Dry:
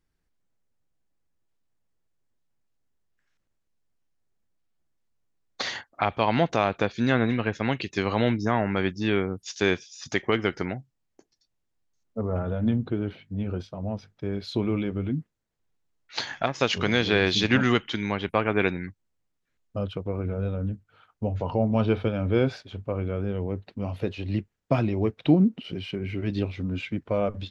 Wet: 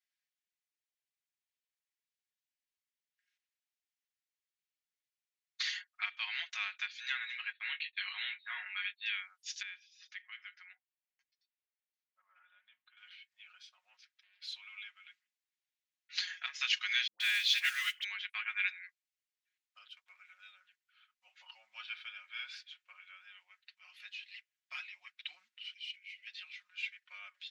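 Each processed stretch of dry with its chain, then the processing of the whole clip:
0:07.52–0:09.06: linear-phase brick-wall low-pass 4,400 Hz + double-tracking delay 20 ms −6 dB + downward expander −33 dBFS
0:09.62–0:12.97: downward compressor 1.5 to 1, threshold −46 dBFS + high-frequency loss of the air 240 metres
0:13.96–0:14.42: downward compressor 3 to 1, threshold −45 dBFS + highs frequency-modulated by the lows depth 0.67 ms
0:17.07–0:18.04: floating-point word with a short mantissa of 2 bits + all-pass dispersion highs, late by 131 ms, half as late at 530 Hz
0:19.89–0:20.60: noise gate −30 dBFS, range −8 dB + high-shelf EQ 4,500 Hz +9 dB
0:25.73–0:26.27: flat-topped bell 1,200 Hz −14 dB 1.2 octaves + phaser with its sweep stopped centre 440 Hz, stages 4
whole clip: inverse Chebyshev high-pass filter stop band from 430 Hz, stop band 70 dB; high-shelf EQ 6,300 Hz −10 dB; comb filter 5.5 ms, depth 76%; level −3 dB

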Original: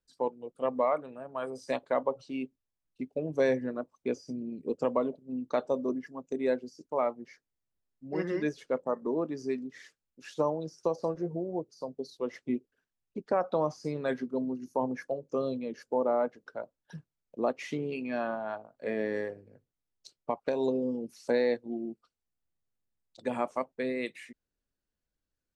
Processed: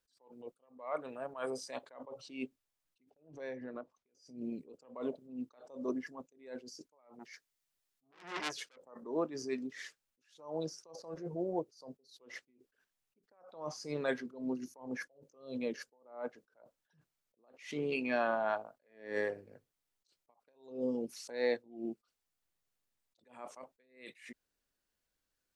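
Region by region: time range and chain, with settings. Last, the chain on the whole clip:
0:03.10–0:04.15: downward compressor 16 to 1, threshold −39 dBFS + high-frequency loss of the air 120 metres
0:07.19–0:08.77: tilt shelving filter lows −4 dB, about 1,400 Hz + saturating transformer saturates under 3,700 Hz
whole clip: downward compressor 3 to 1, threshold −30 dBFS; low-shelf EQ 380 Hz −10.5 dB; level that may rise only so fast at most 130 dB per second; level +6 dB

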